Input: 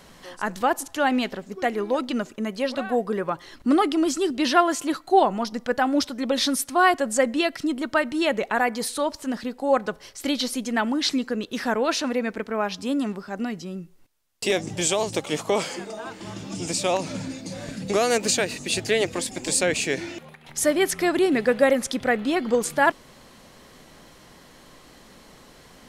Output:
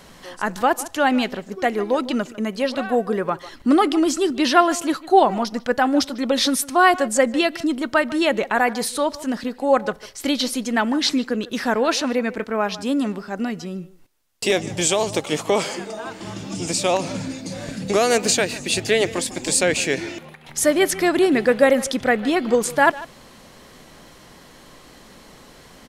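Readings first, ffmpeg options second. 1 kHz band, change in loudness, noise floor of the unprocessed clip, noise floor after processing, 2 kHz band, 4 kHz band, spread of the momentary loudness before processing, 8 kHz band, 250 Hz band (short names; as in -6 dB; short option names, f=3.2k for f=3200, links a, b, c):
+3.5 dB, +3.5 dB, -51 dBFS, -47 dBFS, +3.5 dB, +3.5 dB, 11 LU, +3.5 dB, +3.5 dB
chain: -filter_complex "[0:a]asplit=2[a][b];[b]adelay=150,highpass=300,lowpass=3.4k,asoftclip=type=hard:threshold=-13dB,volume=-17dB[c];[a][c]amix=inputs=2:normalize=0,volume=3.5dB"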